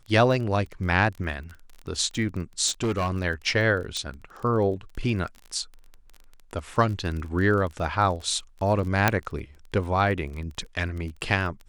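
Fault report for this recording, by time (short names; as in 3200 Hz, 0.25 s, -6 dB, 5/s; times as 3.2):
crackle 24/s -33 dBFS
2.67–3.17 clipped -21.5 dBFS
3.97 pop -17 dBFS
9.08 pop -4 dBFS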